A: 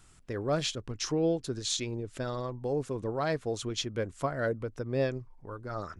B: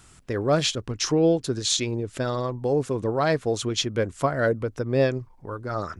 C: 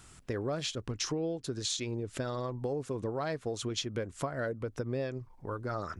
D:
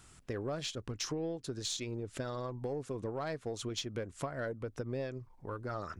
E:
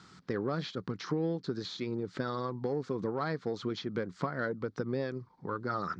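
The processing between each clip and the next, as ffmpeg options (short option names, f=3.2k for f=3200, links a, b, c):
-af "highpass=f=40:p=1,volume=8dB"
-af "acompressor=threshold=-29dB:ratio=6,volume=-2.5dB"
-af "aeval=exprs='0.119*(cos(1*acos(clip(val(0)/0.119,-1,1)))-cos(1*PI/2))+0.015*(cos(4*acos(clip(val(0)/0.119,-1,1)))-cos(4*PI/2))+0.0106*(cos(6*acos(clip(val(0)/0.119,-1,1)))-cos(6*PI/2))':c=same,volume=-3.5dB"
-filter_complex "[0:a]acrossover=split=2800[a][b];[b]acompressor=threshold=-52dB:ratio=4:attack=1:release=60[c];[a][c]amix=inputs=2:normalize=0,highpass=150,equalizer=f=180:t=q:w=4:g=9,equalizer=f=630:t=q:w=4:g=-8,equalizer=f=1.3k:t=q:w=4:g=4,equalizer=f=2.7k:t=q:w=4:g=-9,equalizer=f=4.4k:t=q:w=4:g=5,lowpass=f=5.3k:w=0.5412,lowpass=f=5.3k:w=1.3066,volume=5.5dB"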